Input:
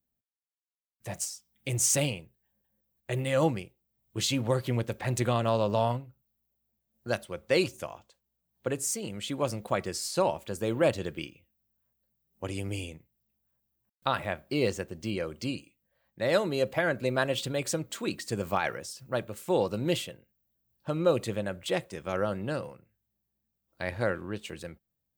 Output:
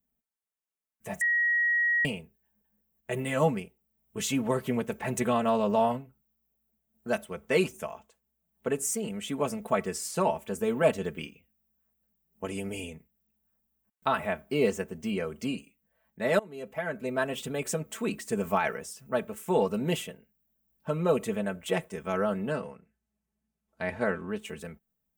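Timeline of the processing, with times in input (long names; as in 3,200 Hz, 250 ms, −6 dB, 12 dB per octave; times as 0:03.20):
0:01.21–0:02.05: beep over 1,900 Hz −22 dBFS
0:16.39–0:18.19: fade in equal-power, from −22.5 dB
0:22.52–0:24.28: low-pass filter 8,400 Hz
whole clip: parametric band 4,300 Hz −12 dB 0.68 octaves; comb filter 4.6 ms, depth 82%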